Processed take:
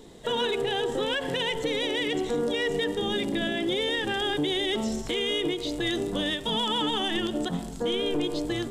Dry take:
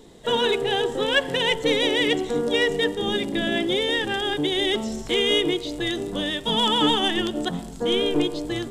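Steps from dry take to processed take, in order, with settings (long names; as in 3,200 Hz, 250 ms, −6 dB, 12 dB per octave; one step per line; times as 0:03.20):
brickwall limiter −19 dBFS, peak gain reduction 11.5 dB
every ending faded ahead of time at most 160 dB per second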